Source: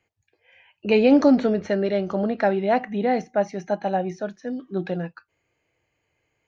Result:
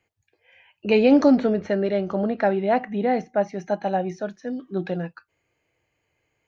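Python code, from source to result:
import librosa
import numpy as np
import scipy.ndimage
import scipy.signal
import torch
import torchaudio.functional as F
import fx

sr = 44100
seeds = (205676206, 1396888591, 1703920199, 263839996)

y = fx.high_shelf(x, sr, hz=4800.0, db=-8.0, at=(1.37, 3.61))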